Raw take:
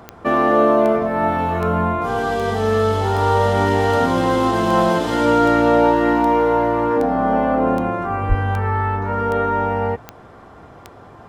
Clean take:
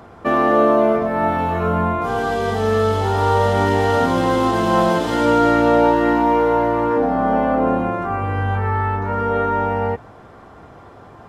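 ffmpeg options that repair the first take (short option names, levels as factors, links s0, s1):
-filter_complex "[0:a]adeclick=t=4,asplit=3[s0][s1][s2];[s0]afade=t=out:st=8.28:d=0.02[s3];[s1]highpass=f=140:w=0.5412,highpass=f=140:w=1.3066,afade=t=in:st=8.28:d=0.02,afade=t=out:st=8.4:d=0.02[s4];[s2]afade=t=in:st=8.4:d=0.02[s5];[s3][s4][s5]amix=inputs=3:normalize=0"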